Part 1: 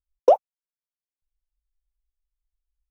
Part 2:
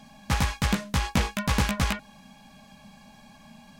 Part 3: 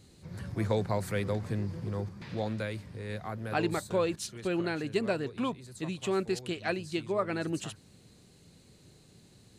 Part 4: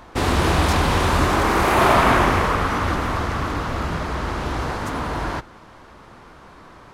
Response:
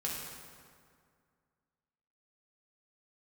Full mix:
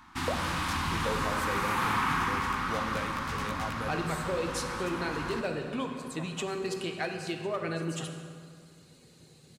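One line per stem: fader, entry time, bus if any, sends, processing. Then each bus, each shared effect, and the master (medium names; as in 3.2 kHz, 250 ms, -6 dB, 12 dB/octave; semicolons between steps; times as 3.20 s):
-5.5 dB, 0.00 s, bus A, send -17 dB, none
-12.5 dB, 1.80 s, no bus, no send, none
+1.0 dB, 0.35 s, bus A, send -6 dB, overload inside the chain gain 22.5 dB
-10.0 dB, 0.00 s, no bus, send -4.5 dB, Chebyshev band-stop 270–1000 Hz, order 2
bus A: 0.0 dB, reverb removal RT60 1.2 s; compression, threshold -31 dBFS, peak gain reduction 14 dB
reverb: on, RT60 2.1 s, pre-delay 3 ms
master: bass shelf 170 Hz -9 dB; compression 1.5:1, threshold -32 dBFS, peak gain reduction 4.5 dB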